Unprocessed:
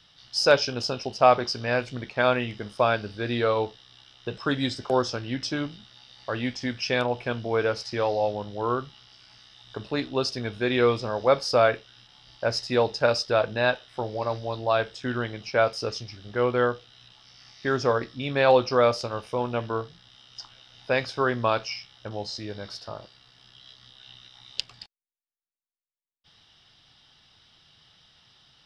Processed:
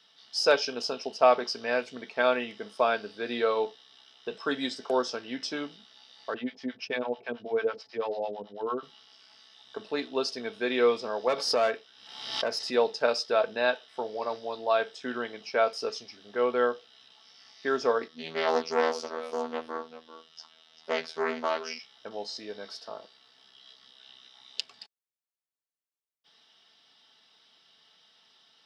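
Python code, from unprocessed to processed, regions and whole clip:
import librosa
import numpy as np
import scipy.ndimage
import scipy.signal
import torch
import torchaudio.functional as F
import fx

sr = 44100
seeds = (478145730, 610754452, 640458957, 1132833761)

y = fx.chain(x, sr, fx.lowpass(hz=4100.0, slope=12),
    fx.low_shelf(hz=450.0, db=4.5),
    fx.harmonic_tremolo(hz=9.1, depth_pct=100, crossover_hz=640.0), at=(6.34, 8.83))
y = fx.chain(y, sr, fx.tube_stage(drive_db=16.0, bias=0.35),
    fx.pre_swell(db_per_s=59.0), at=(11.28, 12.74))
y = fx.chain(y, sr, fx.echo_single(ms=392, db=-13.0),
    fx.robotise(hz=80.6),
    fx.doppler_dist(depth_ms=0.4), at=(18.08, 21.79))
y = scipy.signal.sosfilt(scipy.signal.cheby1(2, 1.0, 340.0, 'highpass', fs=sr, output='sos'), y)
y = y + 0.4 * np.pad(y, (int(4.5 * sr / 1000.0), 0))[:len(y)]
y = y * 10.0 ** (-3.0 / 20.0)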